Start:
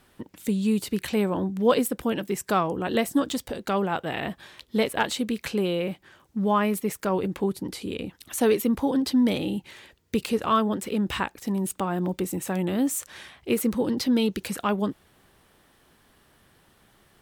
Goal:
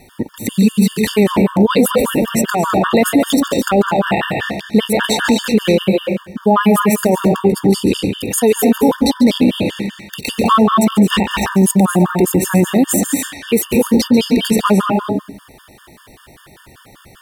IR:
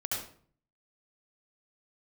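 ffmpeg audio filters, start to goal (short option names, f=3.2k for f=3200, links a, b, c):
-filter_complex "[0:a]asplit=2[a][b];[1:a]atrim=start_sample=2205,adelay=140[c];[b][c]afir=irnorm=-1:irlink=0,volume=-8.5dB[d];[a][d]amix=inputs=2:normalize=0,alimiter=level_in=19dB:limit=-1dB:release=50:level=0:latency=1,afftfilt=real='re*gt(sin(2*PI*5.1*pts/sr)*(1-2*mod(floor(b*sr/1024/910),2)),0)':imag='im*gt(sin(2*PI*5.1*pts/sr)*(1-2*mod(floor(b*sr/1024/910),2)),0)':win_size=1024:overlap=0.75,volume=-1.5dB"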